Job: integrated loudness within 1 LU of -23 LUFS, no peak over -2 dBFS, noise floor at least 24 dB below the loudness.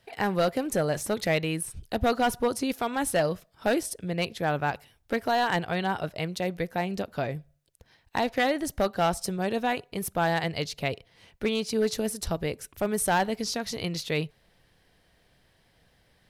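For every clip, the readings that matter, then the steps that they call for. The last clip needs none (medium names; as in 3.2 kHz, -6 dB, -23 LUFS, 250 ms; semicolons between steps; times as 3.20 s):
clipped samples 0.7%; clipping level -17.5 dBFS; loudness -28.5 LUFS; peak level -17.5 dBFS; loudness target -23.0 LUFS
-> clip repair -17.5 dBFS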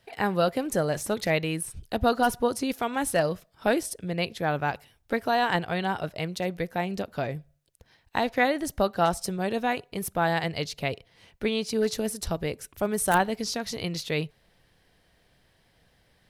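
clipped samples 0.0%; loudness -28.0 LUFS; peak level -8.5 dBFS; loudness target -23.0 LUFS
-> trim +5 dB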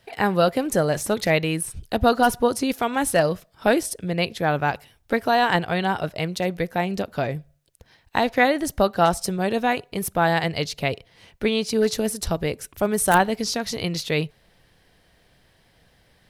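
loudness -23.0 LUFS; peak level -3.5 dBFS; noise floor -61 dBFS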